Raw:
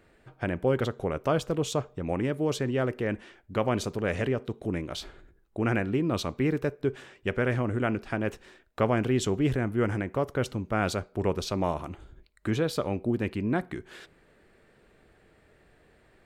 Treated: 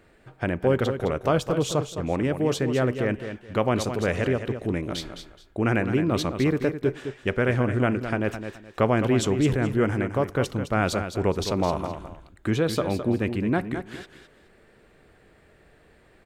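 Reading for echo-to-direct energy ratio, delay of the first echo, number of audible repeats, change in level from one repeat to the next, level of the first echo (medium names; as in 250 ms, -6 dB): -8.5 dB, 212 ms, 2, -12.0 dB, -9.0 dB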